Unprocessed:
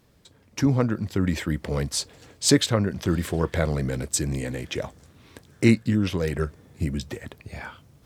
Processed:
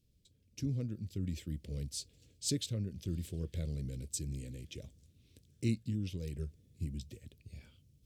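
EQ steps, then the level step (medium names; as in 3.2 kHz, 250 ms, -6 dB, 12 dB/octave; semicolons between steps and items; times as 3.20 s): amplifier tone stack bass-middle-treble 10-0-1; bass shelf 400 Hz -7.5 dB; high-order bell 1.2 kHz -11 dB; +7.0 dB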